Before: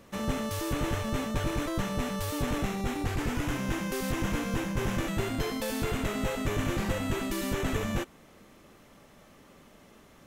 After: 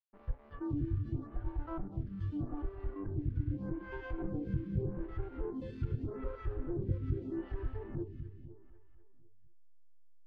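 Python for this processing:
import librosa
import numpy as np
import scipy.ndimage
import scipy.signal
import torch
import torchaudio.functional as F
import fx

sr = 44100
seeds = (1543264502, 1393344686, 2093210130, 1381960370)

y = fx.lower_of_two(x, sr, delay_ms=0.63)
y = fx.env_lowpass(y, sr, base_hz=650.0, full_db=-26.5)
y = fx.noise_reduce_blind(y, sr, reduce_db=16)
y = fx.env_lowpass_down(y, sr, base_hz=690.0, full_db=-29.5)
y = fx.high_shelf(y, sr, hz=2800.0, db=-8.5)
y = fx.backlash(y, sr, play_db=-49.0)
y = fx.spacing_loss(y, sr, db_at_10k=22)
y = fx.echo_feedback(y, sr, ms=249, feedback_pct=53, wet_db=-11.0)
y = fx.stagger_phaser(y, sr, hz=0.82)
y = F.gain(torch.from_numpy(y), 2.0).numpy()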